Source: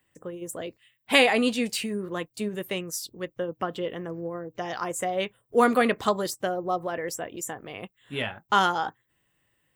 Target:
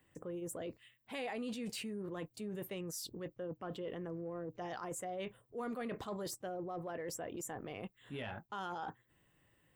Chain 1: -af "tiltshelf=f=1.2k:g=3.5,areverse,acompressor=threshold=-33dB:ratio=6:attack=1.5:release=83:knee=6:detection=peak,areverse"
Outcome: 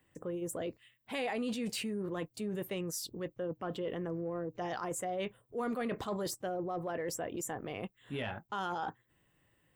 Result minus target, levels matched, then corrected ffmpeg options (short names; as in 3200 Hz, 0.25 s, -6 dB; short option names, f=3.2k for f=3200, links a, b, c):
compressor: peak gain reduction -5.5 dB
-af "tiltshelf=f=1.2k:g=3.5,areverse,acompressor=threshold=-39.5dB:ratio=6:attack=1.5:release=83:knee=6:detection=peak,areverse"